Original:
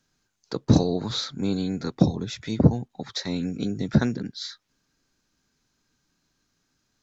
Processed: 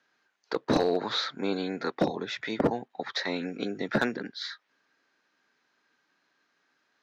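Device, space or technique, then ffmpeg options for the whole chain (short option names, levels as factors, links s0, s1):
megaphone: -af "highpass=470,lowpass=2900,equalizer=f=1800:t=o:w=0.44:g=4.5,asoftclip=type=hard:threshold=0.075,volume=1.88"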